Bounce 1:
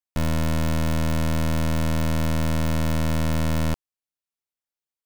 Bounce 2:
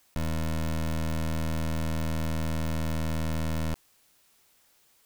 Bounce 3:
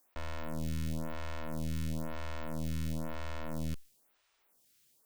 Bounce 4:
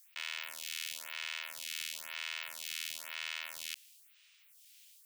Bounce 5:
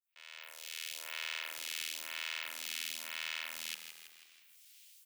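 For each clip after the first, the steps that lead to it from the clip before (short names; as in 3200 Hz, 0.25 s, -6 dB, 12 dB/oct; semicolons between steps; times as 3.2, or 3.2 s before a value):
fast leveller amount 50%; gain -7 dB
photocell phaser 1 Hz; gain -4 dB
resonant high-pass 2600 Hz, resonance Q 1.9; gain +8 dB
opening faded in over 1.13 s; frequency-shifting echo 0.163 s, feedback 54%, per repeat -50 Hz, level -9 dB; high-pass sweep 460 Hz -> 170 Hz, 0.38–4.22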